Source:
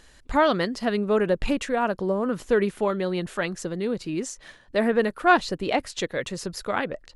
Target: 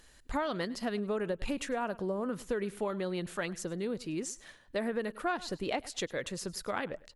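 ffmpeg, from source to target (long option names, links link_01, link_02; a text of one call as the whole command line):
ffmpeg -i in.wav -filter_complex "[0:a]highshelf=frequency=5000:gain=-8,asplit=2[link_01][link_02];[link_02]aecho=0:1:102|204:0.0841|0.0151[link_03];[link_01][link_03]amix=inputs=2:normalize=0,acompressor=threshold=-22dB:ratio=12,aemphasis=mode=production:type=50fm,volume=-6.5dB" out.wav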